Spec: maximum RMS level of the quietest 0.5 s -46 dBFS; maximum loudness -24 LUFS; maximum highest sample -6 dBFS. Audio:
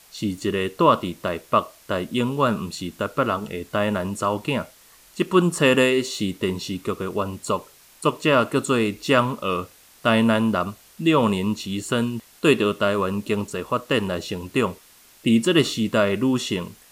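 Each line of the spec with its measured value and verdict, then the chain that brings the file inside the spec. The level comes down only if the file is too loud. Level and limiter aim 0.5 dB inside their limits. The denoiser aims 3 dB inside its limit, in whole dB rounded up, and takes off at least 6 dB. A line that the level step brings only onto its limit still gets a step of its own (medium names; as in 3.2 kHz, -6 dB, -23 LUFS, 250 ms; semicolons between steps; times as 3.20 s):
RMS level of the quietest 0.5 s -51 dBFS: pass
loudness -22.5 LUFS: fail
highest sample -4.0 dBFS: fail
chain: trim -2 dB; peak limiter -6.5 dBFS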